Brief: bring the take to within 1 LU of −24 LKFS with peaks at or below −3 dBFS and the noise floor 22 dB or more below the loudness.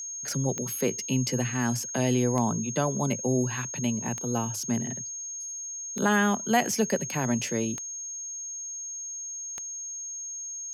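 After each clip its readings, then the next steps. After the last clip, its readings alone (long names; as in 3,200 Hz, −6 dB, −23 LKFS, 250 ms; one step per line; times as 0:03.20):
number of clicks 6; interfering tone 6,500 Hz; level of the tone −34 dBFS; integrated loudness −28.5 LKFS; sample peak −12.0 dBFS; target loudness −24.0 LKFS
→ click removal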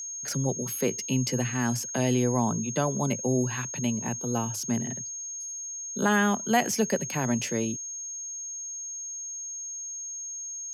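number of clicks 0; interfering tone 6,500 Hz; level of the tone −34 dBFS
→ notch filter 6,500 Hz, Q 30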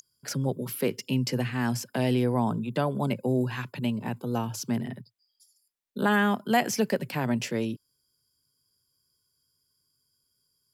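interfering tone none found; integrated loudness −28.5 LKFS; sample peak −12.5 dBFS; target loudness −24.0 LKFS
→ level +4.5 dB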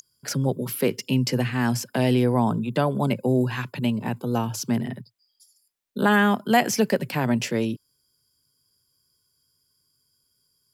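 integrated loudness −24.0 LKFS; sample peak −8.0 dBFS; background noise floor −71 dBFS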